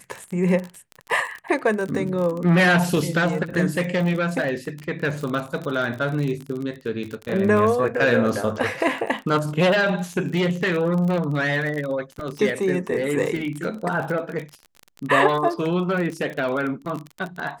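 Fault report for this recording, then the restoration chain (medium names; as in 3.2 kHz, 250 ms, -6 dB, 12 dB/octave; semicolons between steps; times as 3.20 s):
crackle 38 per s -27 dBFS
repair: de-click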